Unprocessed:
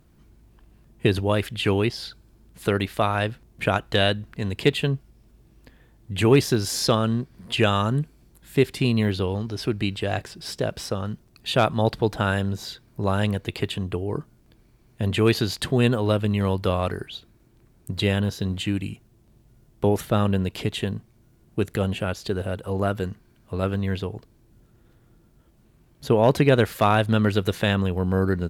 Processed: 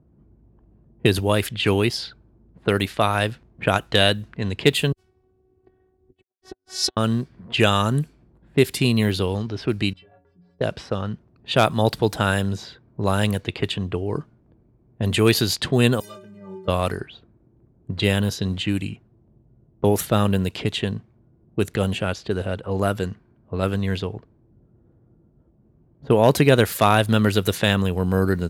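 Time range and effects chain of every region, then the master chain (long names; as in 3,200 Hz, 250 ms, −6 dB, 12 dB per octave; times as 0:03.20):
0:04.92–0:06.97: high-shelf EQ 7,000 Hz +6.5 dB + phases set to zero 373 Hz + saturating transformer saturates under 650 Hz
0:09.93–0:10.61: parametric band 11,000 Hz −10 dB 2.4 octaves + downward compressor 12 to 1, threshold −37 dBFS + stiff-string resonator 84 Hz, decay 0.63 s, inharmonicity 0.03
0:16.00–0:16.68: spike at every zero crossing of −17 dBFS + stiff-string resonator 180 Hz, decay 0.65 s, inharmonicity 0.03
whole clip: low-pass that shuts in the quiet parts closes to 590 Hz, open at −19.5 dBFS; high-pass filter 59 Hz; high-shelf EQ 5,400 Hz +11.5 dB; level +2 dB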